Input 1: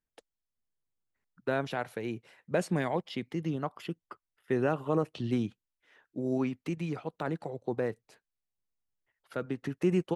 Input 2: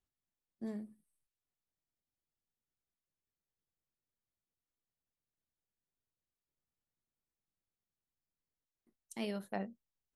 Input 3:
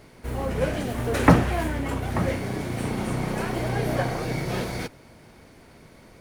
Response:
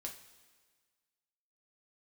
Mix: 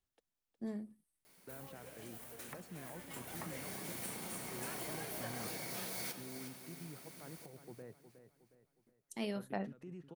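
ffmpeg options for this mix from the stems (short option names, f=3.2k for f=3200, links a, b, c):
-filter_complex "[0:a]lowshelf=f=220:g=7.5,alimiter=limit=-22.5dB:level=0:latency=1:release=29,volume=-19.5dB,asplit=2[a][b];[b]volume=-10.5dB[c];[1:a]volume=0dB[d];[2:a]equalizer=f=190:t=o:w=0.25:g=7,acompressor=threshold=-31dB:ratio=6,aemphasis=mode=production:type=riaa,adelay=1250,volume=-8.5dB,afade=t=in:st=2.9:d=0.6:silence=0.334965,asplit=2[e][f];[f]volume=-9.5dB[g];[c][g]amix=inputs=2:normalize=0,aecho=0:1:363|726|1089|1452|1815|2178:1|0.42|0.176|0.0741|0.0311|0.0131[h];[a][d][e][h]amix=inputs=4:normalize=0"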